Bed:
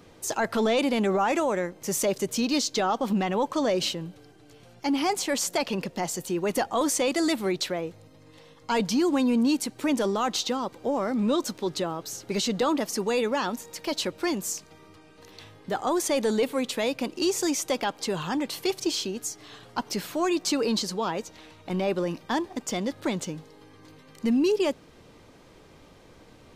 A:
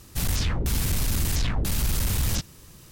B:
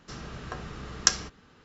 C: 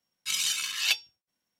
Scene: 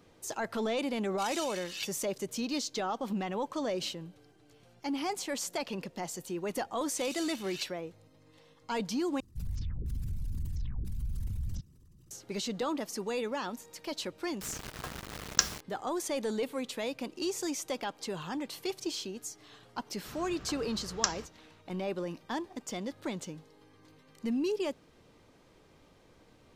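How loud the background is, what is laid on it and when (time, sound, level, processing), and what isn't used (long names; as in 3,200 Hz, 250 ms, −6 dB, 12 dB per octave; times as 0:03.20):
bed −8.5 dB
0:00.92: mix in C −16 dB + parametric band 5,200 Hz +4 dB 2.6 octaves
0:06.71: mix in C −16.5 dB
0:09.20: overwrite with A −10 dB + spectral envelope exaggerated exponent 2
0:14.32: mix in B −4 dB + bit reduction 6 bits
0:19.97: mix in B −7.5 dB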